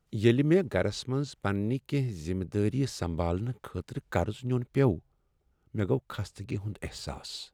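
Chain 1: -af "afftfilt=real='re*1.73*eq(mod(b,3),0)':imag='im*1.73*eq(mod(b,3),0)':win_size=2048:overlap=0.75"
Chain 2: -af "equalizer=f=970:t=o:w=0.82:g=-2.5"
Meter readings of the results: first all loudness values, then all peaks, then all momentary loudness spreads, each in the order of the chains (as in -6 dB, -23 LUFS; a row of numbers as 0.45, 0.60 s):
-32.5, -31.0 LUFS; -13.0, -10.0 dBFS; 14, 13 LU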